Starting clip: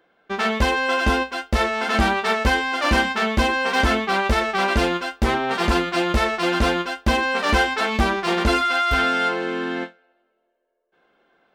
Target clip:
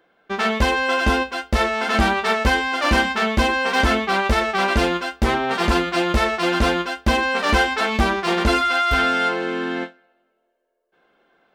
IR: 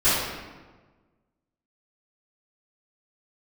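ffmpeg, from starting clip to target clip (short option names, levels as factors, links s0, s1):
-filter_complex "[0:a]asplit=2[s0][s1];[1:a]atrim=start_sample=2205,asetrate=79380,aresample=44100[s2];[s1][s2]afir=irnorm=-1:irlink=0,volume=0.01[s3];[s0][s3]amix=inputs=2:normalize=0,volume=1.12"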